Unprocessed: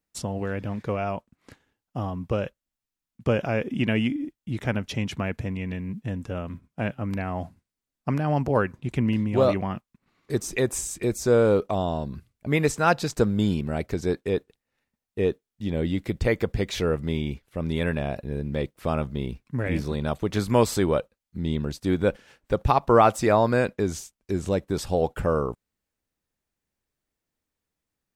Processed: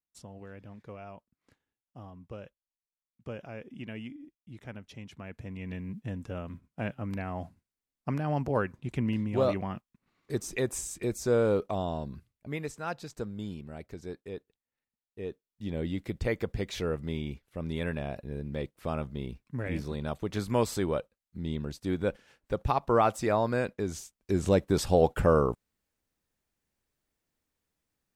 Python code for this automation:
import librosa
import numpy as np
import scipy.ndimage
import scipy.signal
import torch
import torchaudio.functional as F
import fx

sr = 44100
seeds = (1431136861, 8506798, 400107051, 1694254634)

y = fx.gain(x, sr, db=fx.line((5.15, -17.0), (5.75, -6.0), (12.09, -6.0), (12.69, -15.0), (15.21, -15.0), (15.64, -7.0), (23.85, -7.0), (24.49, 1.0)))